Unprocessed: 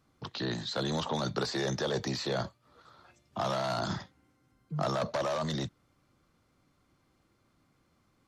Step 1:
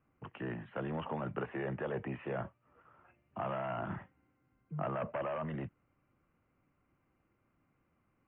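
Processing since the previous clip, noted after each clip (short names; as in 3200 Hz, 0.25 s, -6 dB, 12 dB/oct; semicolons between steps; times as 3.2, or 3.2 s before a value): steep low-pass 2900 Hz 96 dB/oct; gain -5.5 dB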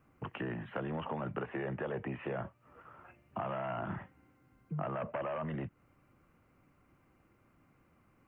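compressor 3:1, threshold -45 dBFS, peak gain reduction 9.5 dB; gain +8 dB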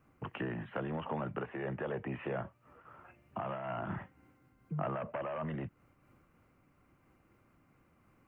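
noise-modulated level, depth 55%; gain +2.5 dB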